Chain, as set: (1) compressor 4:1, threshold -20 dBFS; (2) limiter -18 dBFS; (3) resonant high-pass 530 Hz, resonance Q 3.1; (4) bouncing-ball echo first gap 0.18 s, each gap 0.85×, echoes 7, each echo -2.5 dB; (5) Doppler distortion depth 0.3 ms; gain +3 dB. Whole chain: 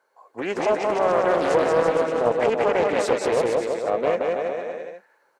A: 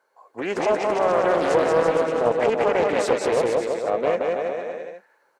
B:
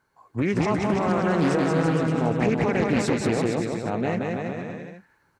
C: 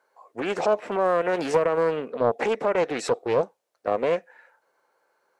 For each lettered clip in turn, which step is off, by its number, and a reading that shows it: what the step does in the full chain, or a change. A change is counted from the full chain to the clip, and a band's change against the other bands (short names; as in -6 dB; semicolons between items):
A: 1, momentary loudness spread change -1 LU; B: 3, 125 Hz band +14.5 dB; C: 4, momentary loudness spread change -4 LU